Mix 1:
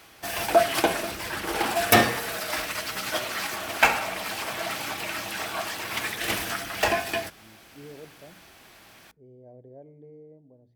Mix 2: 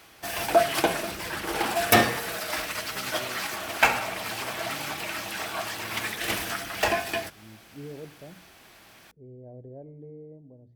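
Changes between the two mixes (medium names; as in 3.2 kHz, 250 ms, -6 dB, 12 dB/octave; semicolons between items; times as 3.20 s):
speech: add tilt EQ -2.5 dB/octave; background: send -11.0 dB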